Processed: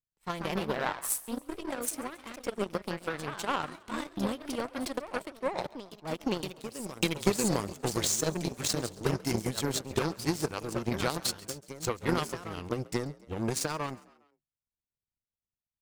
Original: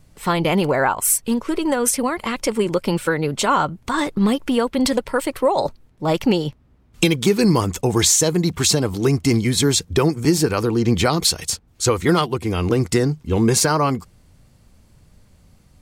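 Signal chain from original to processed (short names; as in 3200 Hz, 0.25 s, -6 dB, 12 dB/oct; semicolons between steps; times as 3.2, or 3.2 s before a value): echoes that change speed 0.169 s, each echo +2 st, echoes 2, each echo -6 dB; power-law curve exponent 2; frequency-shifting echo 0.136 s, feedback 50%, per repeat +49 Hz, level -22 dB; gain -6 dB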